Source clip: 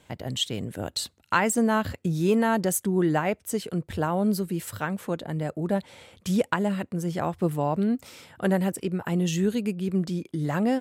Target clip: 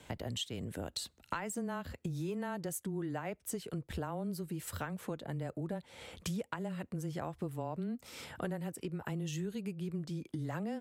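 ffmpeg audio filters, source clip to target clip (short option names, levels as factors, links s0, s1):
-af "acompressor=threshold=0.0112:ratio=6,afreqshift=-13,volume=1.26"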